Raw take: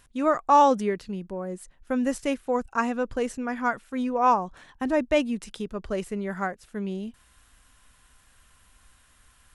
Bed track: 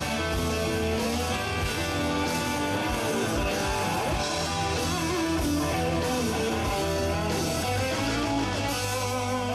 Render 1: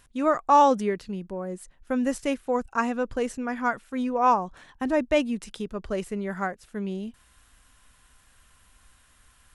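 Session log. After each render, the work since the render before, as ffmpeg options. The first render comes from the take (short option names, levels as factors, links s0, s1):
-af anull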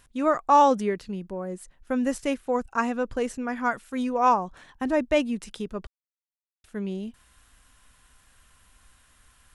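-filter_complex "[0:a]asettb=1/sr,asplit=3[s0][s1][s2];[s0]atrim=end=3.714[s3];[s1]atrim=start=3.71:end=4.29,asetpts=PTS-STARTPTS,afade=t=in:d=0.004:c=qsin,afade=t=out:st=0.576:d=0.004:c=qsin,highshelf=f=3900:g=7[s4];[s2]atrim=start=4.286[s5];[s3][s4]acrossfade=d=0.004:c1=hsin:c2=qsin[s6];[s6][s5]acrossfade=d=0.004:c1=qsin:c2=hsin,asplit=3[s7][s8][s9];[s7]atrim=end=5.87,asetpts=PTS-STARTPTS,afade=t=out:st=5.866:d=0.004:c=hsin[s10];[s8]atrim=start=5.87:end=6.64,asetpts=PTS-STARTPTS,volume=0[s11];[s9]atrim=start=6.64,asetpts=PTS-STARTPTS,afade=t=in:d=0.004:c=hsin[s12];[s10][s11][s12]concat=n=3:v=0:a=1"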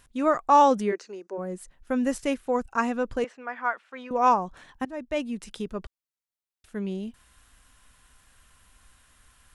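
-filter_complex "[0:a]asplit=3[s0][s1][s2];[s0]afade=t=out:st=0.91:d=0.02[s3];[s1]highpass=f=350:w=0.5412,highpass=f=350:w=1.3066,equalizer=f=380:t=q:w=4:g=4,equalizer=f=1500:t=q:w=4:g=4,equalizer=f=3300:t=q:w=4:g=-10,equalizer=f=6200:t=q:w=4:g=9,lowpass=f=8200:w=0.5412,lowpass=f=8200:w=1.3066,afade=t=in:st=0.91:d=0.02,afade=t=out:st=1.37:d=0.02[s4];[s2]afade=t=in:st=1.37:d=0.02[s5];[s3][s4][s5]amix=inputs=3:normalize=0,asettb=1/sr,asplit=3[s6][s7][s8];[s6]atrim=end=3.244[s9];[s7]atrim=start=3.24:end=4.11,asetpts=PTS-STARTPTS,afade=t=in:d=0.004:c=qsin,afade=t=out:st=0.866:d=0.004:c=qsin,highpass=640,lowpass=2600[s10];[s8]atrim=start=4.106[s11];[s9][s10]acrossfade=d=0.004:c1=hsin:c2=qsin[s12];[s12][s11]acrossfade=d=0.004:c1=qsin:c2=hsin,asplit=2[s13][s14];[s13]atrim=end=4.85,asetpts=PTS-STARTPTS,afade=t=out:st=4.846:d=0.004:c=hsin:silence=0.112202[s15];[s14]atrim=start=4.85,asetpts=PTS-STARTPTS,afade=t=in:d=0.75:silence=0.112202[s16];[s15][s16]concat=n=2:v=0:a=1"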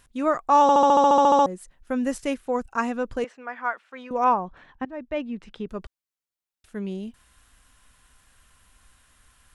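-filter_complex "[0:a]asettb=1/sr,asplit=3[s0][s1][s2];[s0]atrim=end=4.244[s3];[s1]atrim=start=4.24:end=5.69,asetpts=PTS-STARTPTS,afade=t=in:d=0.004:c=qsin,afade=t=out:st=1.446:d=0.004:c=qsin,lowpass=2800[s4];[s2]atrim=start=5.686[s5];[s3][s4]acrossfade=d=0.004:c1=hsin:c2=qsin[s6];[s6][s5]acrossfade=d=0.004:c1=qsin:c2=hsin,asplit=13[s7][s8][s9][s10][s11][s12][s13][s14][s15][s16][s17][s18][s19];[s7]atrim=end=0.692[s20];[s8]atrim=start=0.618:end=0.692[s21];[s9]atrim=start=0.618:end=0.692[s22];[s10]atrim=start=0.618:end=0.692[s23];[s11]atrim=start=0.618:end=0.692[s24];[s12]atrim=start=0.618:end=0.692[s25];[s13]atrim=start=0.618:end=0.692[s26];[s14]atrim=start=0.618:end=0.692[s27];[s15]atrim=start=0.618:end=0.692[s28];[s16]atrim=start=0.618:end=0.692[s29];[s17]atrim=start=0.618:end=0.692[s30];[s18]atrim=start=0.618:end=0.692[s31];[s19]atrim=start=1.458[s32];[s20][s21]acrossfade=d=0.004:c1=hsin:c2=hsin[s33];[s33][s22]acrossfade=d=0.004:c1=hsin:c2=hsin[s34];[s34][s23]acrossfade=d=0.004:c1=hsin:c2=hsin[s35];[s35][s24]acrossfade=d=0.004:c1=hsin:c2=hsin[s36];[s36][s25]acrossfade=d=0.004:c1=hsin:c2=hsin[s37];[s37][s26]acrossfade=d=0.004:c1=hsin:c2=hsin[s38];[s38][s27]acrossfade=d=0.004:c1=hsin:c2=hsin[s39];[s39][s28]acrossfade=d=0.004:c1=hsin:c2=hsin[s40];[s40][s29]acrossfade=d=0.004:c1=hsin:c2=hsin[s41];[s41][s30]acrossfade=d=0.004:c1=hsin:c2=hsin[s42];[s42][s31]acrossfade=d=0.004:c1=hsin:c2=hsin[s43];[s43][s32]acrossfade=d=0.004:c1=hsin:c2=hsin"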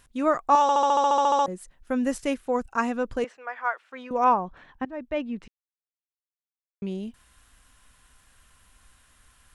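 -filter_complex "[0:a]asettb=1/sr,asplit=3[s0][s1][s2];[s0]atrim=end=0.554[s3];[s1]atrim=start=0.55:end=1.48,asetpts=PTS-STARTPTS,afade=t=in:d=0.004:c=qsin,afade=t=out:st=0.926:d=0.004:c=qsin,highpass=f=960:p=1[s4];[s2]atrim=start=1.476[s5];[s3][s4]acrossfade=d=0.004:c1=hsin:c2=qsin[s6];[s6][s5]acrossfade=d=0.004:c1=qsin:c2=hsin,asettb=1/sr,asplit=3[s7][s8][s9];[s7]atrim=end=3.374[s10];[s8]atrim=start=3.37:end=3.81,asetpts=PTS-STARTPTS,afade=t=in:d=0.004:c=qsin,afade=t=out:st=0.436:d=0.004:c=qsin,highpass=f=390:w=0.5412,highpass=f=390:w=1.3066[s11];[s9]atrim=start=3.806[s12];[s10][s11]acrossfade=d=0.004:c1=hsin:c2=qsin[s13];[s13][s12]acrossfade=d=0.004:c1=qsin:c2=hsin,asplit=3[s14][s15][s16];[s14]atrim=end=5.48,asetpts=PTS-STARTPTS,afade=t=out:st=5.476:d=0.004:c=hsin[s17];[s15]atrim=start=5.48:end=6.82,asetpts=PTS-STARTPTS,volume=0[s18];[s16]atrim=start=6.82,asetpts=PTS-STARTPTS,afade=t=in:d=0.004:c=hsin[s19];[s17][s18][s19]concat=n=3:v=0:a=1"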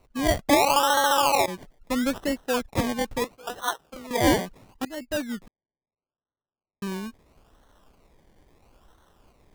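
-af "acrusher=samples=26:mix=1:aa=0.000001:lfo=1:lforange=15.6:lforate=0.75"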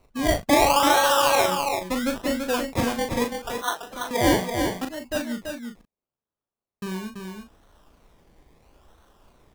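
-filter_complex "[0:a]asplit=2[s0][s1];[s1]adelay=38,volume=0.473[s2];[s0][s2]amix=inputs=2:normalize=0,aecho=1:1:334:0.531"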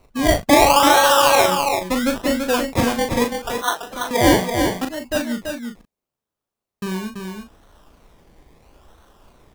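-af "volume=1.88,alimiter=limit=0.794:level=0:latency=1"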